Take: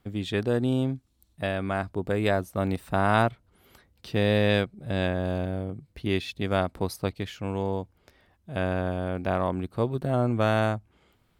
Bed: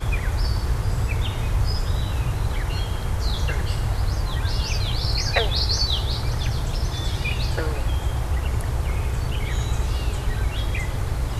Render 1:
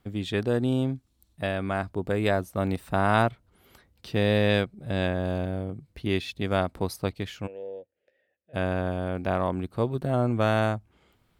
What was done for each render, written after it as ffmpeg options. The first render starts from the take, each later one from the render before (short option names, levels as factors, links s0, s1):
-filter_complex "[0:a]asplit=3[s0][s1][s2];[s0]afade=t=out:st=7.46:d=0.02[s3];[s1]asplit=3[s4][s5][s6];[s4]bandpass=f=530:t=q:w=8,volume=1[s7];[s5]bandpass=f=1840:t=q:w=8,volume=0.501[s8];[s6]bandpass=f=2480:t=q:w=8,volume=0.355[s9];[s7][s8][s9]amix=inputs=3:normalize=0,afade=t=in:st=7.46:d=0.02,afade=t=out:st=8.53:d=0.02[s10];[s2]afade=t=in:st=8.53:d=0.02[s11];[s3][s10][s11]amix=inputs=3:normalize=0"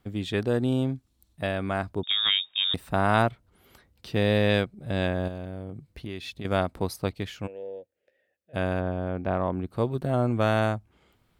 -filter_complex "[0:a]asettb=1/sr,asplit=3[s0][s1][s2];[s0]atrim=end=2.034[s3];[s1]atrim=start=2.03:end=2.74,asetpts=PTS-STARTPTS,afade=t=in:d=0.004:c=qsin,afade=t=out:st=0.706:d=0.004:c=qsin,lowpass=f=3200:t=q:w=0.5098,lowpass=f=3200:t=q:w=0.6013,lowpass=f=3200:t=q:w=0.9,lowpass=f=3200:t=q:w=2.563,afreqshift=-3800[s4];[s2]atrim=start=2.736[s5];[s3][s4]acrossfade=d=0.004:c1=hsin:c2=qsin[s6];[s6][s5]acrossfade=d=0.004:c1=qsin:c2=hsin,asettb=1/sr,asplit=3[s7][s8][s9];[s7]atrim=end=5.284[s10];[s8]atrim=start=5.28:end=6.45,asetpts=PTS-STARTPTS,afade=t=in:d=0.004:c=qsin,afade=t=out:st=1.166:d=0.004:c=qsin,acompressor=threshold=0.0224:ratio=4:attack=3.2:release=140:knee=1:detection=peak[s11];[s9]atrim=start=6.446[s12];[s10][s11]acrossfade=d=0.004:c1=hsin:c2=qsin[s13];[s13][s12]acrossfade=d=0.004:c1=qsin:c2=hsin,asplit=3[s14][s15][s16];[s14]afade=t=out:st=8.79:d=0.02[s17];[s15]lowpass=f=1600:p=1,afade=t=in:st=8.79:d=0.02,afade=t=out:st=9.66:d=0.02[s18];[s16]afade=t=in:st=9.66:d=0.02[s19];[s17][s18][s19]amix=inputs=3:normalize=0"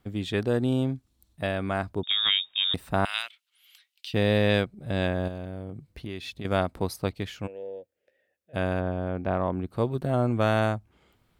-filter_complex "[0:a]asettb=1/sr,asplit=3[s0][s1][s2];[s0]atrim=end=3.054[s3];[s1]atrim=start=3.05:end=4.14,asetpts=PTS-STARTPTS,afade=t=in:d=0.004:c=qsin,afade=t=out:st=1.086:d=0.004:c=qsin,highpass=f=2900:t=q:w=2.5[s4];[s2]atrim=start=4.136[s5];[s3][s4]acrossfade=d=0.004:c1=hsin:c2=qsin[s6];[s6][s5]acrossfade=d=0.004:c1=qsin:c2=hsin"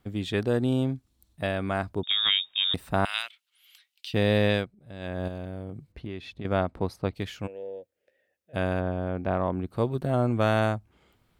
-filter_complex "[0:a]asettb=1/sr,asplit=3[s0][s1][s2];[s0]atrim=end=5.924[s3];[s1]atrim=start=5.92:end=7.13,asetpts=PTS-STARTPTS,afade=t=in:d=0.004:c=qsin,afade=t=out:st=1.206:d=0.004:c=qsin,aemphasis=mode=reproduction:type=75kf[s4];[s2]atrim=start=7.126[s5];[s3][s4]acrossfade=d=0.004:c1=hsin:c2=qsin[s6];[s6][s5]acrossfade=d=0.004:c1=qsin:c2=hsin,asplit=3[s7][s8][s9];[s7]atrim=end=4.79,asetpts=PTS-STARTPTS,afade=t=out:st=4.45:d=0.34:silence=0.199526[s10];[s8]atrim=start=4.79:end=4.99,asetpts=PTS-STARTPTS,volume=0.2[s11];[s9]atrim=start=4.99,asetpts=PTS-STARTPTS,afade=t=in:d=0.34:silence=0.199526[s12];[s10][s11][s12]concat=n=3:v=0:a=1"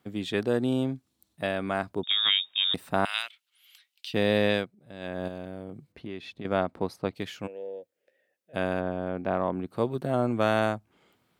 -af "highpass=160"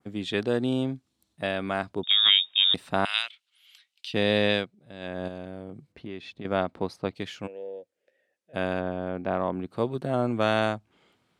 -af "lowpass=9500,adynamicequalizer=threshold=0.01:dfrequency=3500:dqfactor=1.1:tfrequency=3500:tqfactor=1.1:attack=5:release=100:ratio=0.375:range=2.5:mode=boostabove:tftype=bell"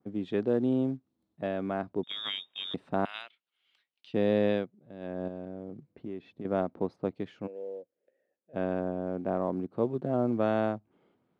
-af "acrusher=bits=6:mode=log:mix=0:aa=0.000001,bandpass=f=300:t=q:w=0.61:csg=0"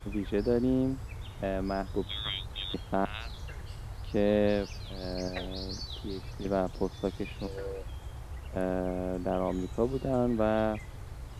-filter_complex "[1:a]volume=0.126[s0];[0:a][s0]amix=inputs=2:normalize=0"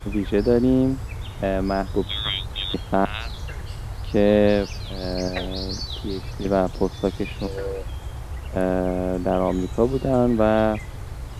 -af "volume=2.82"